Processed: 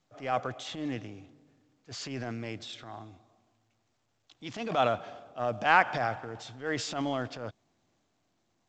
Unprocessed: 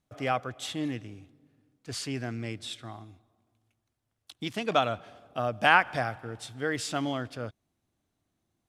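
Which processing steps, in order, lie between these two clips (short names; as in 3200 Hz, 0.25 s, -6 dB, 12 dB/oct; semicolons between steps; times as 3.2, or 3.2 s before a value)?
HPF 100 Hz 12 dB/oct; bell 730 Hz +5 dB 1.5 oct; transient shaper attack -10 dB, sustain +5 dB; gain -2.5 dB; µ-law 128 kbps 16000 Hz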